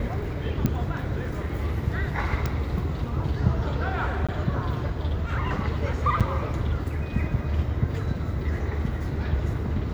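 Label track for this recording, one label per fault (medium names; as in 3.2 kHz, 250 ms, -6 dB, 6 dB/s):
0.660000	0.660000	pop -11 dBFS
2.460000	2.460000	pop
4.270000	4.290000	dropout 16 ms
6.200000	6.210000	dropout 6.6 ms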